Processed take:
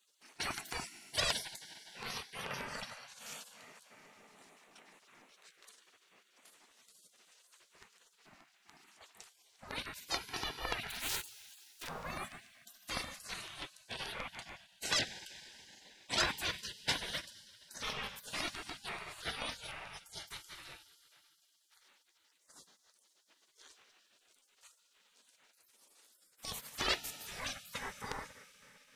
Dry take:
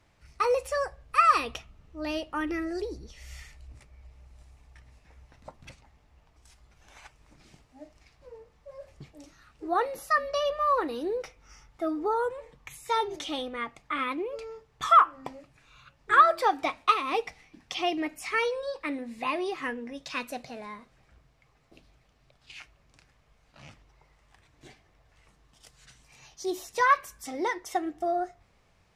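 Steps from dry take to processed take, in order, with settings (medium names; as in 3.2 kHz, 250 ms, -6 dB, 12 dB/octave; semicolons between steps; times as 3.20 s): 10.90–11.88 s: cycle switcher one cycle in 2, inverted; LFO notch square 6.9 Hz 520–5200 Hz; valve stage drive 18 dB, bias 0.5; Schroeder reverb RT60 3.6 s, combs from 33 ms, DRR 13 dB; spectral gate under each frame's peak -25 dB weak; trim +8.5 dB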